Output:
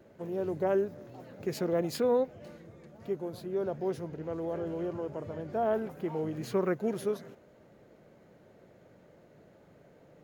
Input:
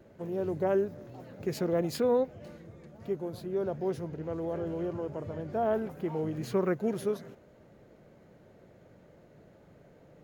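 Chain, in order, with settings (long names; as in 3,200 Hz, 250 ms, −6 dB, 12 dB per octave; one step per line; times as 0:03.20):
low-shelf EQ 120 Hz −7 dB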